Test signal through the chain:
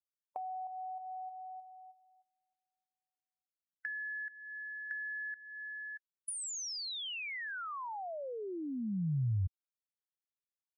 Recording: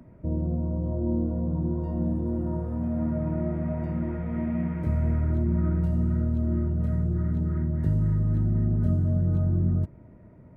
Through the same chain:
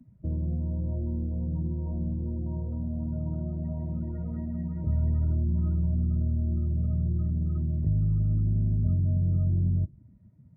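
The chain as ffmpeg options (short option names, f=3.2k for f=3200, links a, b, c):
-filter_complex "[0:a]afftdn=nr=23:nf=-37,highshelf=f=2k:g=6.5,acrossover=split=170[a][b];[b]acompressor=threshold=-41dB:ratio=6[c];[a][c]amix=inputs=2:normalize=0"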